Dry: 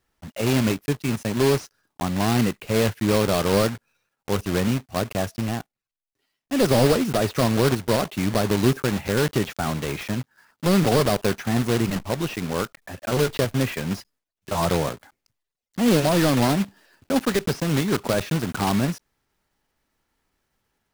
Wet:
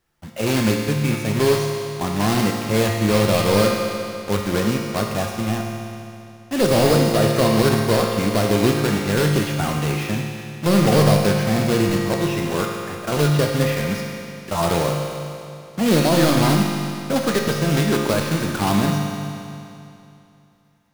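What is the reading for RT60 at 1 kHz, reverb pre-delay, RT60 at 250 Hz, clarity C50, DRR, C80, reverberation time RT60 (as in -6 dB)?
2.7 s, 6 ms, 2.7 s, 2.0 dB, 0.0 dB, 3.0 dB, 2.7 s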